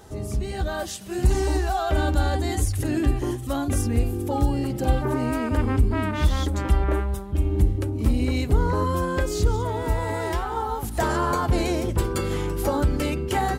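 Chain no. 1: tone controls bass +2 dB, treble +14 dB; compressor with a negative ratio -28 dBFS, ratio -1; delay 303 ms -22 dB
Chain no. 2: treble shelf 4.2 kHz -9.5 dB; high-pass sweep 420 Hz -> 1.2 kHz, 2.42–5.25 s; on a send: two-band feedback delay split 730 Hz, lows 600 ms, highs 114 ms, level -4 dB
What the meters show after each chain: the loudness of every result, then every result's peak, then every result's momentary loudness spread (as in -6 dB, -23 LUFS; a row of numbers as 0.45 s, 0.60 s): -27.5 LUFS, -26.0 LUFS; -10.0 dBFS, -9.0 dBFS; 7 LU, 11 LU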